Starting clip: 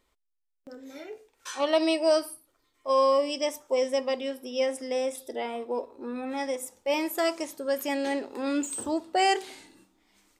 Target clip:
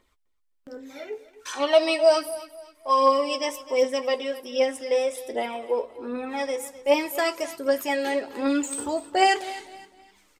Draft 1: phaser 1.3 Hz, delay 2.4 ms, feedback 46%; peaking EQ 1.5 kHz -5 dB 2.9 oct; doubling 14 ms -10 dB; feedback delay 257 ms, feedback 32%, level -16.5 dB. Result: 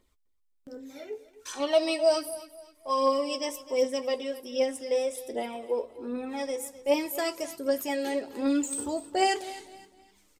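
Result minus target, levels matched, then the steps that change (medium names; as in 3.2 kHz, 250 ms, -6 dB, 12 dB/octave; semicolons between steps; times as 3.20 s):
2 kHz band -3.0 dB
change: peaking EQ 1.5 kHz +3.5 dB 2.9 oct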